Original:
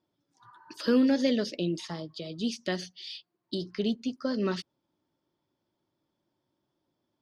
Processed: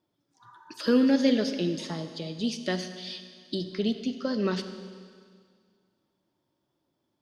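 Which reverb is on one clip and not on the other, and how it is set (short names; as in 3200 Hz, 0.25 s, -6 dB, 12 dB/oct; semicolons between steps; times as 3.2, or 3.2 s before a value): Schroeder reverb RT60 2 s, combs from 33 ms, DRR 8.5 dB; gain +1.5 dB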